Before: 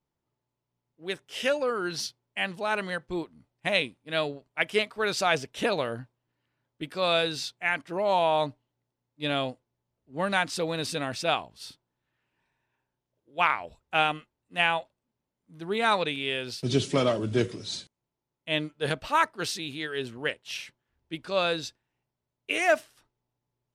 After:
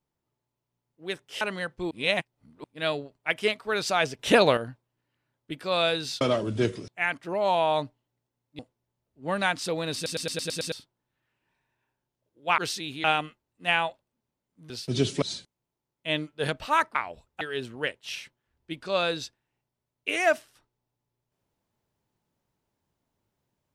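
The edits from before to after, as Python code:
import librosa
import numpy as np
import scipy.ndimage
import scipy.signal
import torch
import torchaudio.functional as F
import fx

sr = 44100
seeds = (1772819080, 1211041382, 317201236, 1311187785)

y = fx.edit(x, sr, fx.cut(start_s=1.41, length_s=1.31),
    fx.reverse_span(start_s=3.22, length_s=0.73),
    fx.clip_gain(start_s=5.5, length_s=0.38, db=8.0),
    fx.cut(start_s=9.23, length_s=0.27),
    fx.stutter_over(start_s=10.86, slice_s=0.11, count=7),
    fx.swap(start_s=13.49, length_s=0.46, other_s=19.37, other_length_s=0.46),
    fx.cut(start_s=15.61, length_s=0.84),
    fx.move(start_s=16.97, length_s=0.67, to_s=7.52), tone=tone)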